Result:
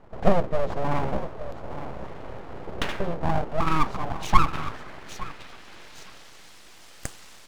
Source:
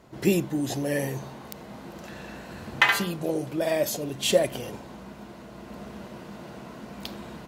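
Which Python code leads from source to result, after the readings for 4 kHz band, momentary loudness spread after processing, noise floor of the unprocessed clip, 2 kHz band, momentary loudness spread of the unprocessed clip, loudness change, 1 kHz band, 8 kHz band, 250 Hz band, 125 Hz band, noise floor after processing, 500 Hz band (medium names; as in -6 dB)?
-7.5 dB, 22 LU, -44 dBFS, -7.0 dB, 19 LU, -2.0 dB, +8.0 dB, -9.0 dB, -2.5 dB, +3.0 dB, -47 dBFS, -2.0 dB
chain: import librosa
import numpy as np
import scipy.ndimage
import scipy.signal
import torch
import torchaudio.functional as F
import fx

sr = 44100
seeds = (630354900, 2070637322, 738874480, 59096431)

y = fx.env_lowpass_down(x, sr, base_hz=1700.0, full_db=-19.0)
y = fx.echo_feedback(y, sr, ms=863, feedback_pct=27, wet_db=-11.5)
y = fx.filter_sweep_bandpass(y, sr, from_hz=300.0, to_hz=4300.0, start_s=3.36, end_s=6.61, q=0.92)
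y = np.abs(y)
y = y * librosa.db_to_amplitude(8.0)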